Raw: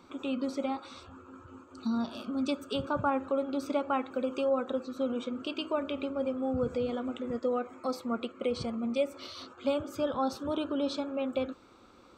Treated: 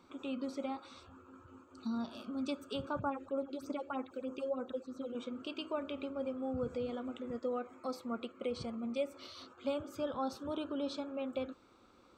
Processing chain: 2.99–5.15 phaser stages 4, 3.2 Hz, lowest notch 140–3700 Hz; gain -6.5 dB

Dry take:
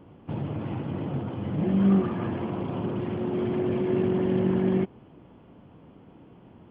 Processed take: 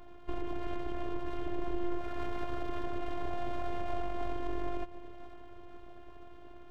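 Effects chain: compressor 6:1, threshold -31 dBFS, peak gain reduction 13.5 dB; diffused feedback echo 0.495 s, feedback 59%, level -15.5 dB; full-wave rectifier; robotiser 351 Hz; gain +3 dB

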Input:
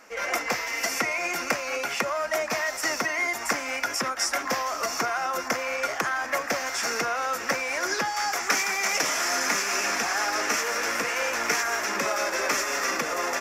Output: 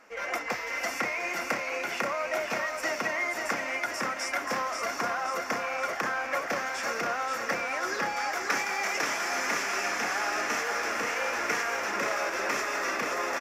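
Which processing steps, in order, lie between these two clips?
tone controls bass -1 dB, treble -7 dB; on a send: feedback echo 0.531 s, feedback 56%, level -5 dB; on the sum: gain -4 dB

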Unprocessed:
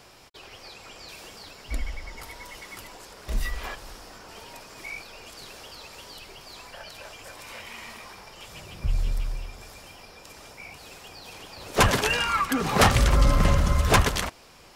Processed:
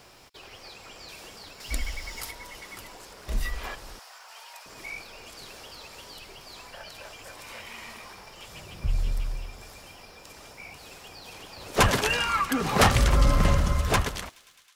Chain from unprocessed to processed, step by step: ending faded out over 1.23 s; bit-crush 11-bit; 1.6–2.31 high shelf 2500 Hz +10.5 dB; 3.99–4.66 HPF 710 Hz 24 dB/oct; thin delay 0.106 s, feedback 84%, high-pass 2300 Hz, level -23 dB; gain -1 dB

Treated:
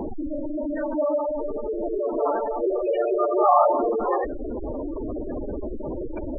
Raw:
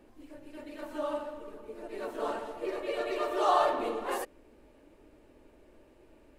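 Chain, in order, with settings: zero-crossing step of -29.5 dBFS; spectral gate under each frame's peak -10 dB strong; gain +7.5 dB

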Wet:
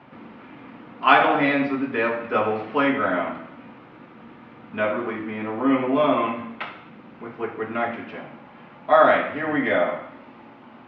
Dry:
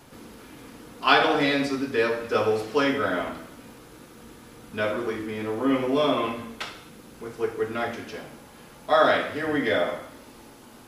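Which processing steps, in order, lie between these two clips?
speaker cabinet 160–2500 Hz, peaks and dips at 320 Hz -3 dB, 450 Hz -9 dB, 1600 Hz -4 dB; gain +5.5 dB

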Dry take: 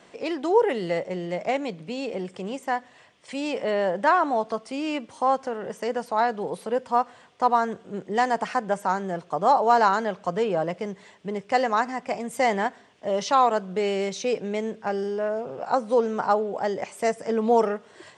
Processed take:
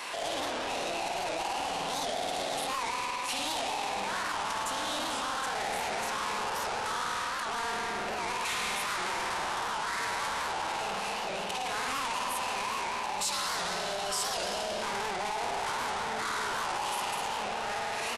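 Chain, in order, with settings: tilt -2.5 dB/oct; outdoor echo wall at 120 m, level -23 dB; negative-ratio compressor -30 dBFS, ratio -1; HPF 850 Hz 12 dB/oct; spring tank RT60 2.7 s, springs 50 ms, chirp 60 ms, DRR -3.5 dB; limiter -24.5 dBFS, peak gain reduction 11 dB; sample leveller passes 5; steep low-pass 8800 Hz 36 dB/oct; formant shift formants +5 st; high shelf 5400 Hz +7 dB; record warp 78 rpm, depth 160 cents; gain -6.5 dB

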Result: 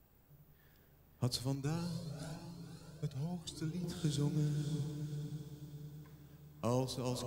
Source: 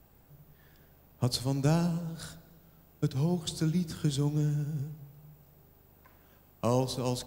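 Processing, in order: bell 730 Hz -2.5 dB 0.77 oct; diffused feedback echo 0.572 s, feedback 43%, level -7.5 dB; 1.55–3.84 cascading flanger rising 1 Hz; gain -6.5 dB

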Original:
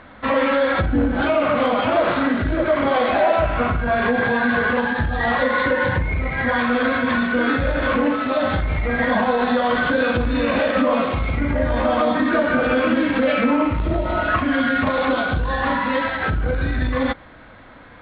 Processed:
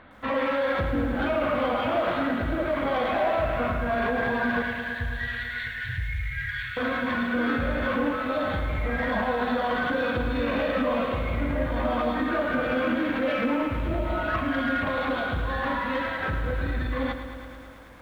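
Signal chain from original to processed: 4.62–6.77 Chebyshev band-stop 130–1600 Hz, order 4; soft clip -9.5 dBFS, distortion -24 dB; lo-fi delay 0.109 s, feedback 80%, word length 8-bit, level -10 dB; gain -7 dB

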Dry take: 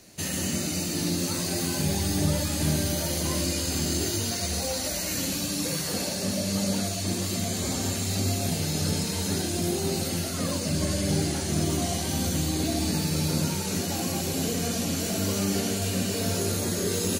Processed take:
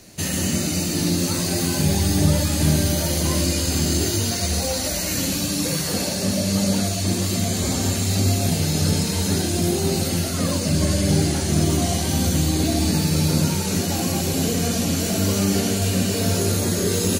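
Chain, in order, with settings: low shelf 160 Hz +4.5 dB; gain +5 dB

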